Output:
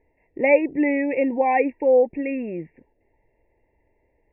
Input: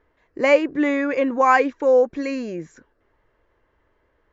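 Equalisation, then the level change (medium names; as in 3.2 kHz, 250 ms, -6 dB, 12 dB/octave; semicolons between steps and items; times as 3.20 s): elliptic band-stop 910–1900 Hz, stop band 50 dB; brick-wall FIR low-pass 2.8 kHz; 0.0 dB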